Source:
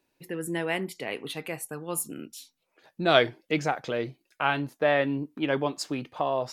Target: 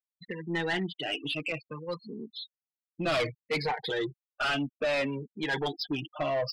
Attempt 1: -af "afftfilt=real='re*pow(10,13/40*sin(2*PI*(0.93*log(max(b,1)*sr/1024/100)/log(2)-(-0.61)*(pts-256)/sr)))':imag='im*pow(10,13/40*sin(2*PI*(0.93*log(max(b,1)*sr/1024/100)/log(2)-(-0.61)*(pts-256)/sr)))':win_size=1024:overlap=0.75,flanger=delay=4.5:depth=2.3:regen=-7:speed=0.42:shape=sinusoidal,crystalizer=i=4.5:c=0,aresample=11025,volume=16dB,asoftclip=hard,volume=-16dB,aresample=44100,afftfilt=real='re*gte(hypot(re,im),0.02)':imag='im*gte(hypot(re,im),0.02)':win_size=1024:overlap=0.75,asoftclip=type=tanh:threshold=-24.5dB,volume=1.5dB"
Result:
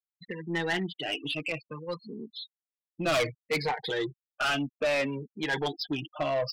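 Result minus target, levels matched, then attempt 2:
gain into a clipping stage and back: distortion −7 dB
-af "afftfilt=real='re*pow(10,13/40*sin(2*PI*(0.93*log(max(b,1)*sr/1024/100)/log(2)-(-0.61)*(pts-256)/sr)))':imag='im*pow(10,13/40*sin(2*PI*(0.93*log(max(b,1)*sr/1024/100)/log(2)-(-0.61)*(pts-256)/sr)))':win_size=1024:overlap=0.75,flanger=delay=4.5:depth=2.3:regen=-7:speed=0.42:shape=sinusoidal,crystalizer=i=4.5:c=0,aresample=11025,volume=24.5dB,asoftclip=hard,volume=-24.5dB,aresample=44100,afftfilt=real='re*gte(hypot(re,im),0.02)':imag='im*gte(hypot(re,im),0.02)':win_size=1024:overlap=0.75,asoftclip=type=tanh:threshold=-24.5dB,volume=1.5dB"

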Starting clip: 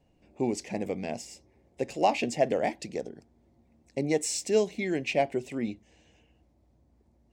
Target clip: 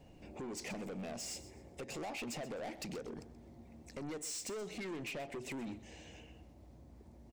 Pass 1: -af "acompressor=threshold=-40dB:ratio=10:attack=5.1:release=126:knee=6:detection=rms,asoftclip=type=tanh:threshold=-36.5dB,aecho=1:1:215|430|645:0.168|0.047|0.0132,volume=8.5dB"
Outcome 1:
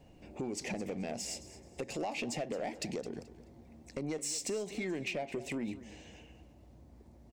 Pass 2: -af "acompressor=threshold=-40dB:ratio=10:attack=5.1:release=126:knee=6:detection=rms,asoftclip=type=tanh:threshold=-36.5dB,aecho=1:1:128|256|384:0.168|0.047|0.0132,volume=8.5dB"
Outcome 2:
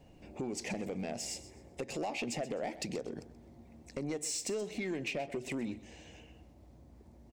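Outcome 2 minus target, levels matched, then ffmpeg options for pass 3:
soft clipping: distortion −12 dB
-af "acompressor=threshold=-40dB:ratio=10:attack=5.1:release=126:knee=6:detection=rms,asoftclip=type=tanh:threshold=-48dB,aecho=1:1:128|256|384:0.168|0.047|0.0132,volume=8.5dB"

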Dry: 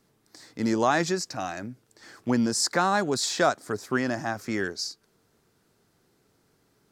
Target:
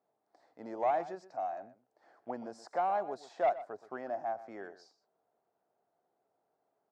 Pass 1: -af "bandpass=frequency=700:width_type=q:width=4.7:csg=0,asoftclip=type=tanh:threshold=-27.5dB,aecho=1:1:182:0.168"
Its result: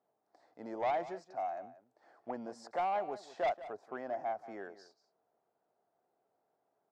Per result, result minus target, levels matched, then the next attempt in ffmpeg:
echo 59 ms late; soft clipping: distortion +7 dB
-af "bandpass=frequency=700:width_type=q:width=4.7:csg=0,asoftclip=type=tanh:threshold=-27.5dB,aecho=1:1:123:0.168"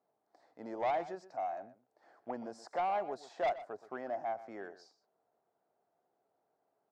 soft clipping: distortion +7 dB
-af "bandpass=frequency=700:width_type=q:width=4.7:csg=0,asoftclip=type=tanh:threshold=-21dB,aecho=1:1:123:0.168"

